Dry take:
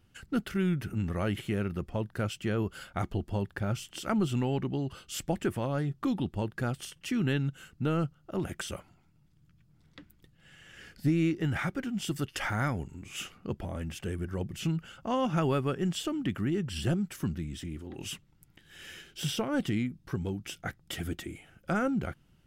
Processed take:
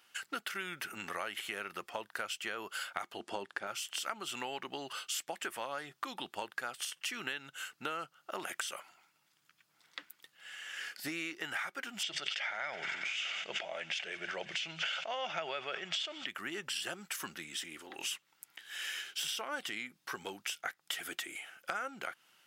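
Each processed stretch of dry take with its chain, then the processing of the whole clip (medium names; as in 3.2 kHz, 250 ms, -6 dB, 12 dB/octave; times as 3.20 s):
3.20–3.67 s: low-pass 10 kHz 24 dB/octave + peaking EQ 300 Hz +8 dB 1.7 oct
12.03–16.27 s: cabinet simulation 110–5800 Hz, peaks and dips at 160 Hz +5 dB, 260 Hz -8 dB, 630 Hz +9 dB, 1.1 kHz -8 dB, 2.2 kHz +8 dB, 3.5 kHz +5 dB + feedback echo behind a high-pass 93 ms, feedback 84%, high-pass 1.5 kHz, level -20.5 dB + decay stretcher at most 22 dB/s
whole clip: high-pass 980 Hz 12 dB/octave; compression 6:1, threshold -45 dBFS; trim +9.5 dB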